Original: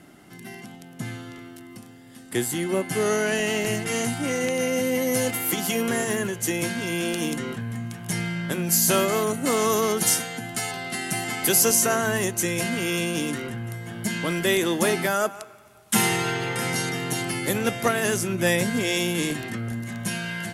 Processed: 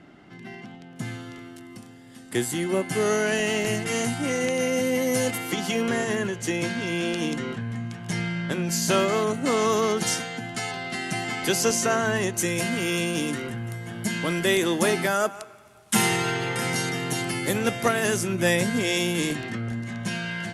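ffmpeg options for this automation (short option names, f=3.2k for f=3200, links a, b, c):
-af "asetnsamples=n=441:p=0,asendcmd='0.96 lowpass f 10000;5.38 lowpass f 6000;12.34 lowpass f 11000;19.35 lowpass f 6200',lowpass=3.8k"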